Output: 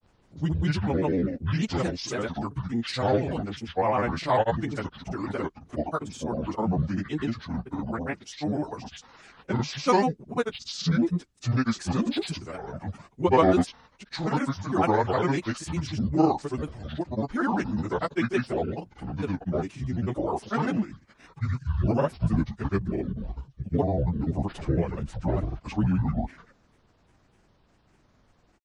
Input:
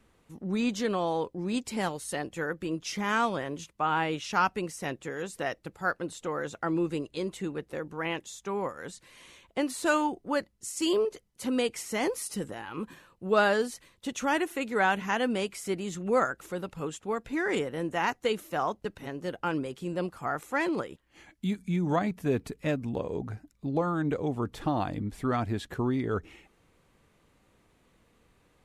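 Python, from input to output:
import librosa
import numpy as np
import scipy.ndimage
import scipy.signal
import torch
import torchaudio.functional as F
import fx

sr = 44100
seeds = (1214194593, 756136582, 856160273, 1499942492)

y = fx.pitch_bins(x, sr, semitones=-9.5)
y = fx.granulator(y, sr, seeds[0], grain_ms=100.0, per_s=20.0, spray_ms=100.0, spread_st=7)
y = y * 10.0 ** (5.5 / 20.0)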